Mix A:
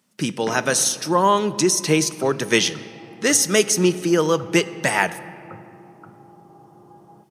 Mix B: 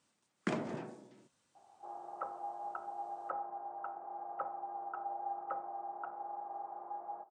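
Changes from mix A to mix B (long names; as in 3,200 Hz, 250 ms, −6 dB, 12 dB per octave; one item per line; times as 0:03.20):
speech: muted
second sound: add high-pass with resonance 700 Hz, resonance Q 4.1
reverb: off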